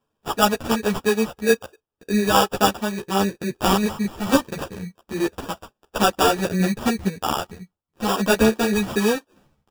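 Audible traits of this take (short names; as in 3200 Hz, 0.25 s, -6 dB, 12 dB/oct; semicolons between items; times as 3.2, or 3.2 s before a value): aliases and images of a low sample rate 2100 Hz, jitter 0%; tremolo saw down 4.7 Hz, depth 40%; a shimmering, thickened sound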